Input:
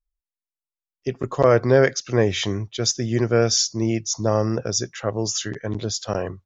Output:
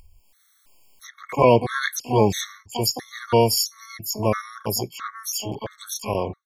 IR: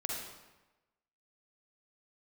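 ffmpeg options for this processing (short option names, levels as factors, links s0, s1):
-filter_complex "[0:a]acompressor=mode=upward:threshold=0.0355:ratio=2.5,asplit=2[s0][s1];[s1]asetrate=88200,aresample=44100,atempo=0.5,volume=0.631[s2];[s0][s2]amix=inputs=2:normalize=0,afftfilt=real='re*gt(sin(2*PI*1.5*pts/sr)*(1-2*mod(floor(b*sr/1024/1100),2)),0)':imag='im*gt(sin(2*PI*1.5*pts/sr)*(1-2*mod(floor(b*sr/1024/1100),2)),0)':win_size=1024:overlap=0.75"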